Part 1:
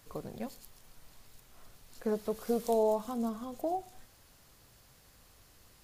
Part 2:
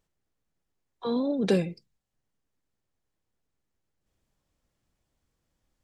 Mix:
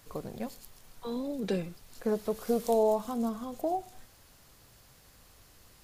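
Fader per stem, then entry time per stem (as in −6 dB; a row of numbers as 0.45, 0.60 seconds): +2.5, −7.5 decibels; 0.00, 0.00 seconds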